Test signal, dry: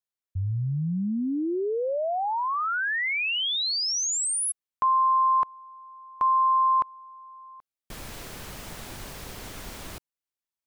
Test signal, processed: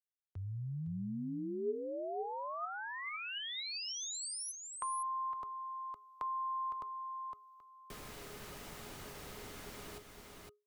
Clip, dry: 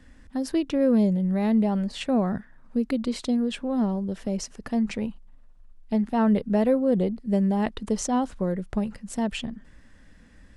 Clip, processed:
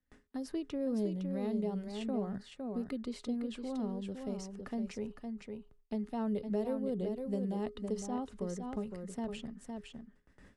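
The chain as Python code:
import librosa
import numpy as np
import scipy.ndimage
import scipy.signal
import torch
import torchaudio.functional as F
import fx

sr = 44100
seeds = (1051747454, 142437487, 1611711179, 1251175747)

p1 = fx.gate_hold(x, sr, open_db=-41.0, close_db=-49.0, hold_ms=11.0, range_db=-32, attack_ms=0.44, release_ms=141.0)
p2 = fx.dynamic_eq(p1, sr, hz=1900.0, q=0.96, threshold_db=-39.0, ratio=4.0, max_db=-7)
p3 = fx.comb_fb(p2, sr, f0_hz=420.0, decay_s=0.27, harmonics='odd', damping=0.5, mix_pct=80)
p4 = p3 + fx.echo_single(p3, sr, ms=510, db=-7.0, dry=0)
y = fx.band_squash(p4, sr, depth_pct=40)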